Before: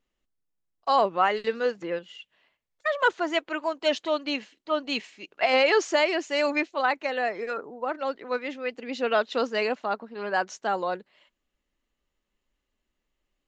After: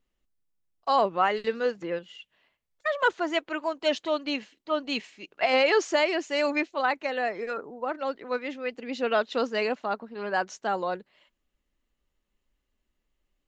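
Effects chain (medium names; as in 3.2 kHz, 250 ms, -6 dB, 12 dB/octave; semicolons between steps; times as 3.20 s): bass shelf 180 Hz +5.5 dB; trim -1.5 dB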